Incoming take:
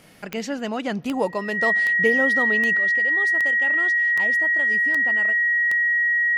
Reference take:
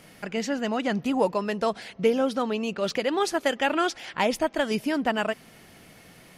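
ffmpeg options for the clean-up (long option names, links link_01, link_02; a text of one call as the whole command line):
ffmpeg -i in.wav -af "adeclick=threshold=4,bandreject=frequency=1900:width=30,asetnsamples=nb_out_samples=441:pad=0,asendcmd='2.78 volume volume 11dB',volume=0dB" out.wav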